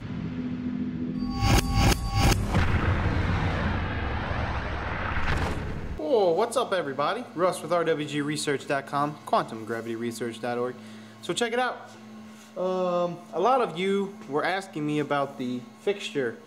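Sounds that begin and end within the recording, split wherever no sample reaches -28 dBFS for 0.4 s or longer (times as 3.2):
11.25–11.73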